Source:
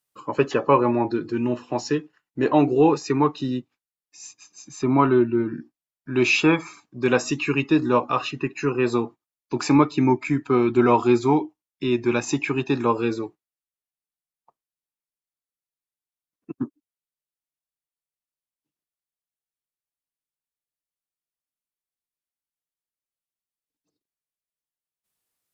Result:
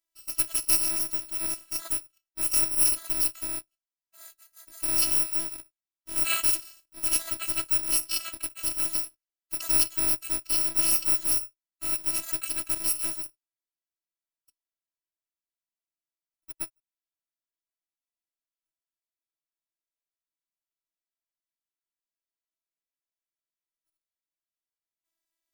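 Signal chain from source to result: bit-reversed sample order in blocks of 128 samples; robot voice 330 Hz; trim -4 dB

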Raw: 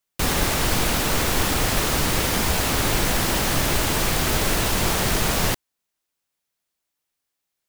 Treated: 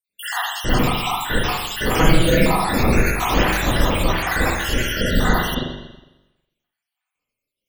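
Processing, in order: random holes in the spectrogram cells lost 79%; 1.89–2.52 s: comb 6.2 ms, depth 76%; spring tank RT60 1 s, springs 41/45 ms, chirp 80 ms, DRR -10 dB

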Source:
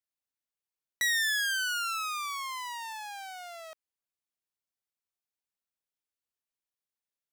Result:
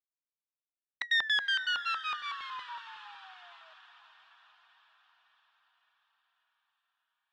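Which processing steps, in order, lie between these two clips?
LFO low-pass square 5.4 Hz 960–3500 Hz; gate -32 dBFS, range -16 dB; tone controls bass -1 dB, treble -6 dB; band-stop 670 Hz, Q 12; on a send: echo that smears into a reverb 477 ms, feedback 60%, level -15 dB

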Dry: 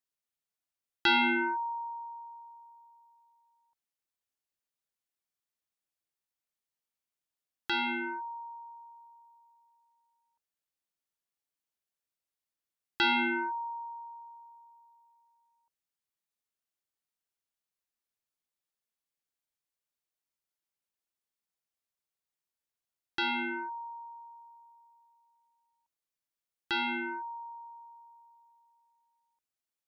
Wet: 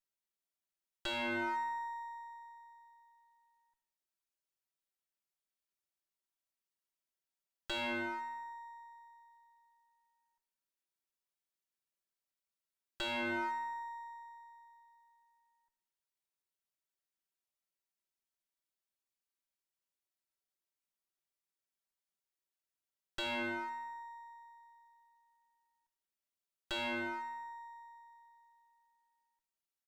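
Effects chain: comb filter that takes the minimum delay 5.2 ms; comb 3.1 ms, depth 32%; peak limiter -26.5 dBFS, peak gain reduction 11 dB; on a send: feedback delay 83 ms, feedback 49%, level -14 dB; on the sum: trim -3 dB

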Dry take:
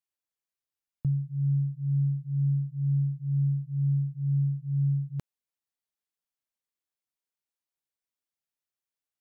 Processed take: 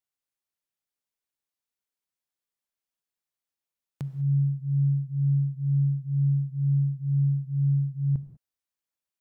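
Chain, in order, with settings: reverse the whole clip; gated-style reverb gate 220 ms flat, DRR 11.5 dB

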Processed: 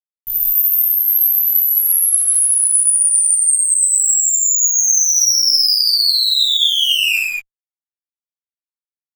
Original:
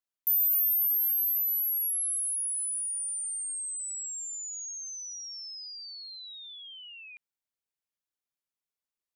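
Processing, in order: fuzz box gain 48 dB, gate -53 dBFS; gated-style reverb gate 240 ms flat, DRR -7 dB; three-phase chorus; trim -4 dB

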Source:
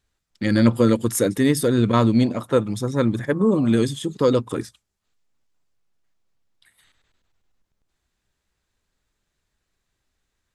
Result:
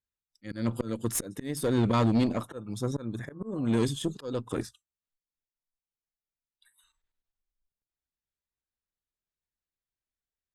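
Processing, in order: slow attack 409 ms; spectral noise reduction 19 dB; valve stage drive 17 dB, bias 0.45; trim -2 dB

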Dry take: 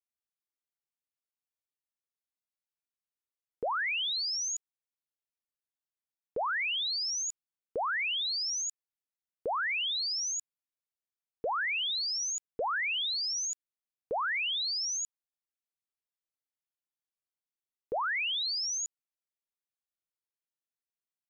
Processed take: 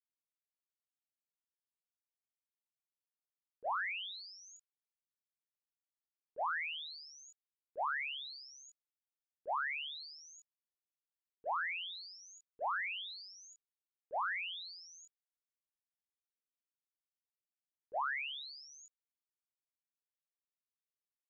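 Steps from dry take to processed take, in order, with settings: gate -29 dBFS, range -35 dB; chorus 0.11 Hz, delay 20 ms, depth 7.3 ms; trim +15 dB

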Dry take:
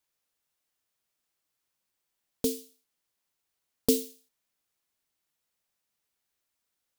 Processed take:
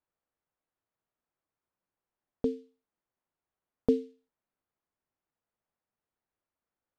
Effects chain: low-pass 1.3 kHz 12 dB/octave

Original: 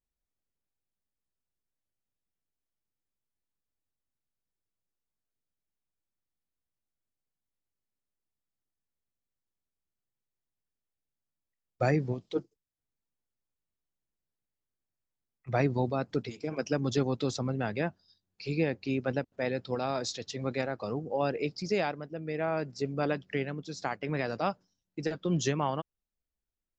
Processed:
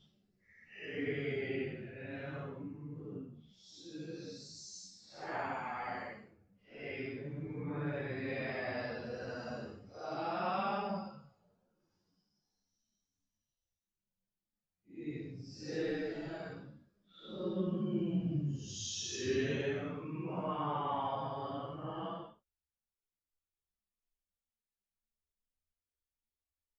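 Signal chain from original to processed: wow and flutter 67 cents; Paulstretch 8.6×, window 0.05 s, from 23.23 s; three-phase chorus; trim -4.5 dB

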